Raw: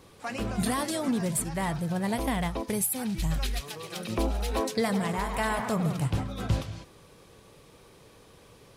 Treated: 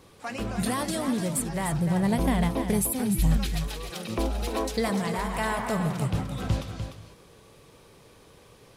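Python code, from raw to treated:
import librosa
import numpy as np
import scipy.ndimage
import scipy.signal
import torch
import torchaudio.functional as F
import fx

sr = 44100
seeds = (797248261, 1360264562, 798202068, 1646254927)

p1 = fx.low_shelf(x, sr, hz=390.0, db=7.0, at=(1.72, 3.38))
y = p1 + fx.echo_single(p1, sr, ms=298, db=-8.0, dry=0)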